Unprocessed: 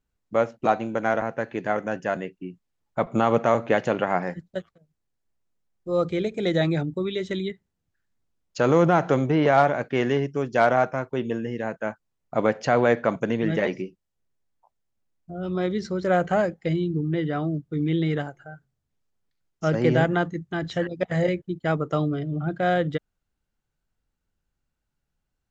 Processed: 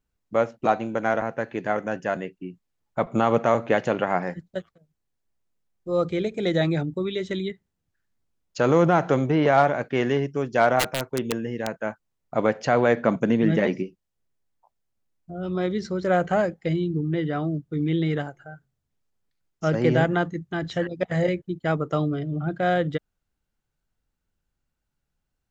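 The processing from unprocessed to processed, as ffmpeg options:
ffmpeg -i in.wav -filter_complex "[0:a]asplit=3[link_01][link_02][link_03];[link_01]afade=type=out:start_time=10.79:duration=0.02[link_04];[link_02]aeval=exprs='(mod(6.31*val(0)+1,2)-1)/6.31':channel_layout=same,afade=type=in:start_time=10.79:duration=0.02,afade=type=out:start_time=11.74:duration=0.02[link_05];[link_03]afade=type=in:start_time=11.74:duration=0.02[link_06];[link_04][link_05][link_06]amix=inputs=3:normalize=0,asettb=1/sr,asplit=3[link_07][link_08][link_09];[link_07]atrim=end=12.974[link_10];[link_08]atrim=start=12.97:end=13.83,asetpts=PTS-STARTPTS,afade=type=in:duration=0.004:curve=qsin,afade=type=out:start_time=0.856:duration=0.004:curve=qsin,equalizer=frequency=220:width=1.1:gain=6[link_11];[link_09]atrim=start=13.826[link_12];[link_10][link_11]acrossfade=duration=0.004:curve1=hsin:curve2=qsin[link_13];[link_13][link_12]acrossfade=duration=0.004:curve1=qsin:curve2=hsin" out.wav

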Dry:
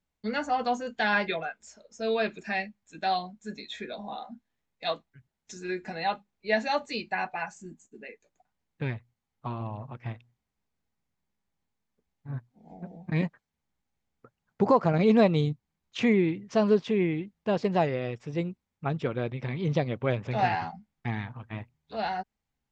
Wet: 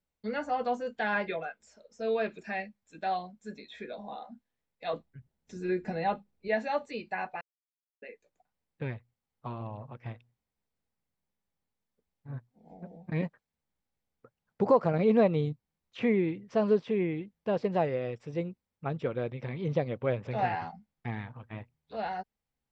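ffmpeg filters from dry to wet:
ffmpeg -i in.wav -filter_complex "[0:a]asettb=1/sr,asplit=3[link_01][link_02][link_03];[link_01]atrim=end=4.934[link_04];[link_02]atrim=start=4.93:end=6.48,asetpts=PTS-STARTPTS,afade=type=in:duration=0.004:curve=qsin,afade=type=out:start_time=1.546:duration=0.004:curve=qsin,lowshelf=frequency=440:gain=11[link_05];[link_03]atrim=start=6.476[link_06];[link_04][link_05]acrossfade=duration=0.004:curve1=hsin:curve2=qsin[link_07];[link_07][link_06]acrossfade=duration=0.004:curve1=qsin:curve2=hsin,asplit=3[link_08][link_09][link_10];[link_08]atrim=end=7.41,asetpts=PTS-STARTPTS,afade=type=out:start_time=7.406:duration=0.004:curve=hsin[link_11];[link_09]atrim=start=7.41:end=8.02,asetpts=PTS-STARTPTS,volume=0[link_12];[link_10]atrim=start=8.02,asetpts=PTS-STARTPTS,afade=type=in:duration=0.004:curve=hsin[link_13];[link_11][link_12][link_13]concat=n=3:v=0:a=1,bandreject=frequency=6600:width=13,acrossover=split=3000[link_14][link_15];[link_15]acompressor=threshold=-52dB:ratio=4:attack=1:release=60[link_16];[link_14][link_16]amix=inputs=2:normalize=0,equalizer=frequency=510:width=3.1:gain=5.5,volume=-4.5dB" out.wav

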